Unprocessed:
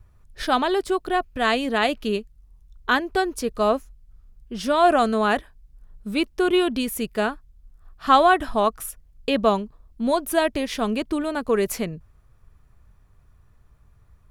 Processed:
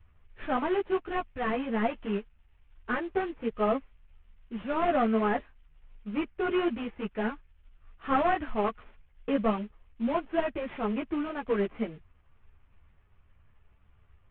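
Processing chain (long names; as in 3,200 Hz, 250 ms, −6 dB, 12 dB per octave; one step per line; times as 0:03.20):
variable-slope delta modulation 16 kbit/s
string-ensemble chorus
level −3.5 dB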